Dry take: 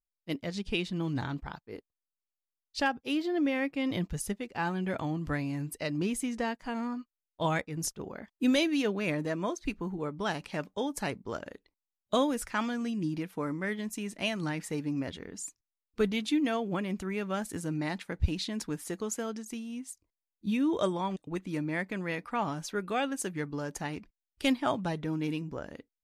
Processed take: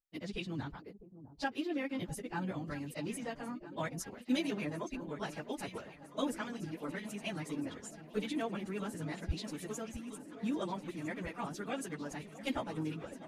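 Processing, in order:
time stretch by phase vocoder 0.51×
delay that swaps between a low-pass and a high-pass 653 ms, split 850 Hz, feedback 89%, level −14 dB
level −3.5 dB

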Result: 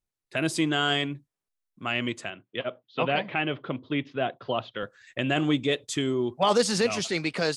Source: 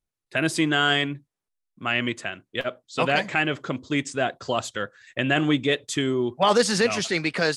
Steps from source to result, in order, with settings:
0:02.30–0:04.83: elliptic band-pass filter 110–3,300 Hz, stop band 40 dB
dynamic equaliser 1,700 Hz, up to −5 dB, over −40 dBFS, Q 2.1
level −2.5 dB

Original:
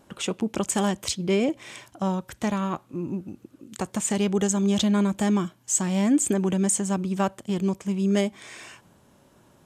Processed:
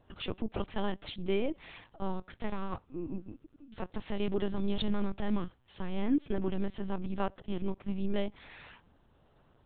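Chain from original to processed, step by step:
notch filter 2,200 Hz, Q 24
bit-depth reduction 12 bits, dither none
linear-prediction vocoder at 8 kHz pitch kept
level −7 dB

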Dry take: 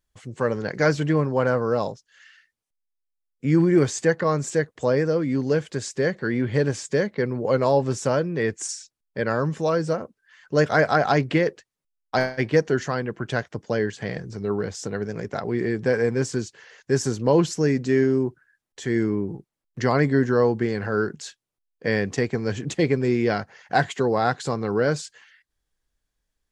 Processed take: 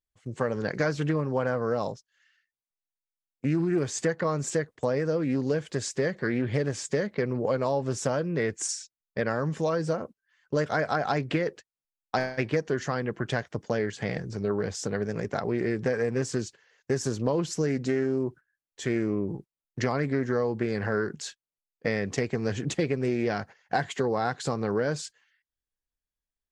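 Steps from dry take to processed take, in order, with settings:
downward compressor 5 to 1, threshold −23 dBFS, peak gain reduction 9.5 dB
noise gate −42 dBFS, range −15 dB
highs frequency-modulated by the lows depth 0.2 ms

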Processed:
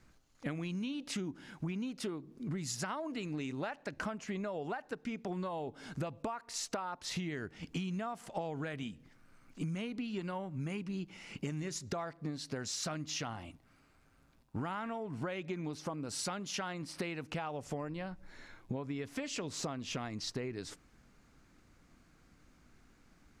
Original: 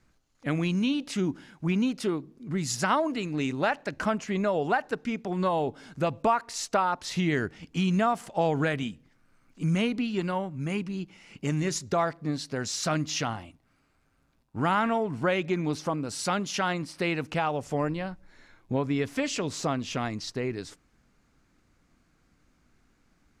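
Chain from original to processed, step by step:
downward compressor 16 to 1, threshold −37 dBFS, peak gain reduction 19 dB
level +2 dB

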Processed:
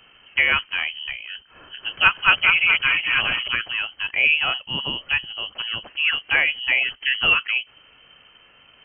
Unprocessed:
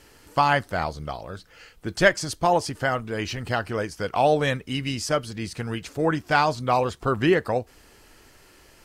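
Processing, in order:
0:01.34–0:03.48: feedback delay that plays each chunk backwards 210 ms, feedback 56%, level 0 dB
voice inversion scrambler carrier 3,100 Hz
level +1 dB

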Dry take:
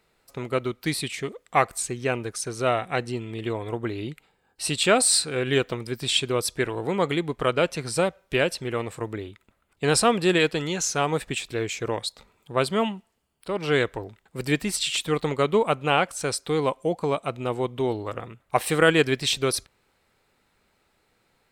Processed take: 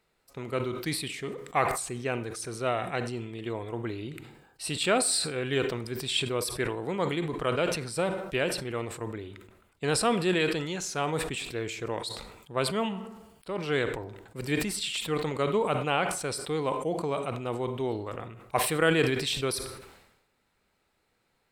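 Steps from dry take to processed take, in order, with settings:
dynamic equaliser 6,300 Hz, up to −5 dB, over −44 dBFS, Q 2.9
on a send at −16 dB: convolution reverb RT60 0.70 s, pre-delay 32 ms
on the sum: level that may fall only so fast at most 58 dB per second
level −6 dB

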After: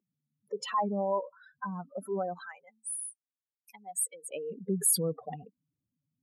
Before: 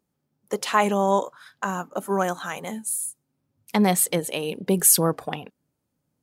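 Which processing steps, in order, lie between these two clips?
expanding power law on the bin magnitudes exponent 3.1
0:02.40–0:04.31: high-pass filter 1,300 Hz 12 dB per octave
level −8.5 dB

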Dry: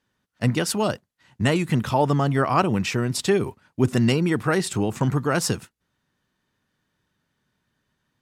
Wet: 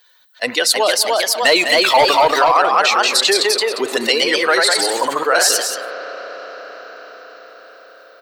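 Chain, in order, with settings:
spectral dynamics exaggerated over time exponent 1.5
high-pass filter 500 Hz 24 dB per octave
0:00.93–0:02.11: leveller curve on the samples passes 2
parametric band 4,100 Hz +13.5 dB 0.22 octaves
single-tap delay 202 ms −16.5 dB
on a send at −21 dB: convolution reverb RT60 4.1 s, pre-delay 33 ms
on the sum: delay with pitch and tempo change per echo 345 ms, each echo +1 semitone, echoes 2
boost into a limiter +11.5 dB
envelope flattener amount 50%
level −3.5 dB

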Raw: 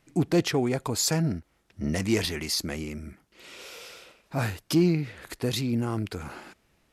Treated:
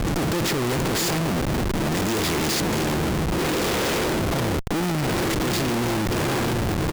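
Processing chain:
compressor on every frequency bin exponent 0.4
far-end echo of a speakerphone 370 ms, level −14 dB
gain into a clipping stage and back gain 15.5 dB
0:04.40–0:04.83: low-pass filter 1,300 Hz 12 dB per octave
bit reduction 5 bits
delay that swaps between a low-pass and a high-pass 688 ms, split 980 Hz, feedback 66%, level −8.5 dB
comparator with hysteresis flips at −27 dBFS

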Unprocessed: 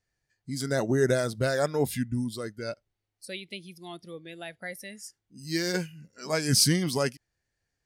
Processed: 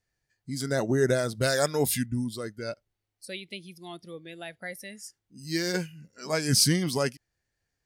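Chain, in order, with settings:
0:01.41–0:02.06: high-shelf EQ 2,700 Hz +10 dB

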